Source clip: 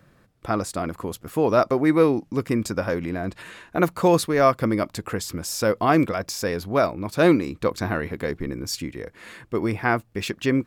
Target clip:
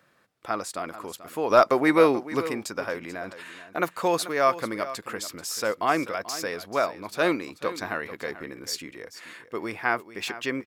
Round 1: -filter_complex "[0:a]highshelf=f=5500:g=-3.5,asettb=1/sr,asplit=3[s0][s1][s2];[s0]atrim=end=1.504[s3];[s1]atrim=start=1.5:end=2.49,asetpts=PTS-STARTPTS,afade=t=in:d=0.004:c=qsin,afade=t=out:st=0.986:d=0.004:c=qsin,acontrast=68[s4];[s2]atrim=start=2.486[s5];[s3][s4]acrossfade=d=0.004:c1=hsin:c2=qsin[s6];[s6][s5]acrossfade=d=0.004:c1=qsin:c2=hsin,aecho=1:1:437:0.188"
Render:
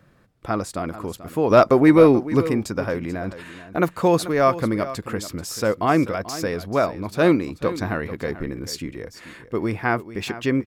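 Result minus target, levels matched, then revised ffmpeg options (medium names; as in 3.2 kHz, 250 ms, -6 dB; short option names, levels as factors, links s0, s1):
1 kHz band -3.0 dB
-filter_complex "[0:a]highpass=f=870:p=1,highshelf=f=5500:g=-3.5,asettb=1/sr,asplit=3[s0][s1][s2];[s0]atrim=end=1.504[s3];[s1]atrim=start=1.5:end=2.49,asetpts=PTS-STARTPTS,afade=t=in:d=0.004:c=qsin,afade=t=out:st=0.986:d=0.004:c=qsin,acontrast=68[s4];[s2]atrim=start=2.486[s5];[s3][s4]acrossfade=d=0.004:c1=hsin:c2=qsin[s6];[s6][s5]acrossfade=d=0.004:c1=qsin:c2=hsin,aecho=1:1:437:0.188"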